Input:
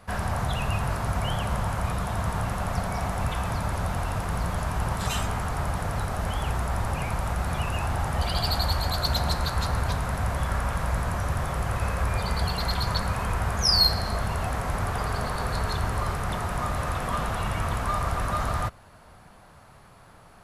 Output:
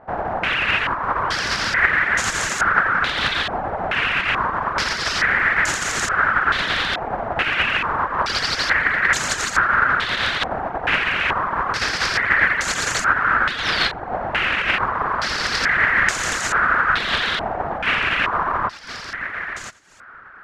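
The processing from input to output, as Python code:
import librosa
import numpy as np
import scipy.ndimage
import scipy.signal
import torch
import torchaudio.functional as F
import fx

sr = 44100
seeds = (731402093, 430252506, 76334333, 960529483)

p1 = fx.spec_flatten(x, sr, power=0.29)
p2 = fx.sample_hold(p1, sr, seeds[0], rate_hz=1300.0, jitter_pct=0)
p3 = p1 + (p2 * 10.0 ** (-5.5 / 20.0))
p4 = p3 + 10.0 ** (-11.5 / 20.0) * np.pad(p3, (int(88 * sr / 1000.0), 0))[:len(p3)]
p5 = fx.rider(p4, sr, range_db=10, speed_s=0.5)
p6 = p5 + fx.echo_single(p5, sr, ms=1016, db=-10.5, dry=0)
p7 = fx.dereverb_blind(p6, sr, rt60_s=0.63)
p8 = fx.peak_eq(p7, sr, hz=1600.0, db=14.5, octaves=1.5)
p9 = fx.filter_held_lowpass(p8, sr, hz=2.3, low_hz=760.0, high_hz=6900.0)
y = p9 * 10.0 ** (-4.0 / 20.0)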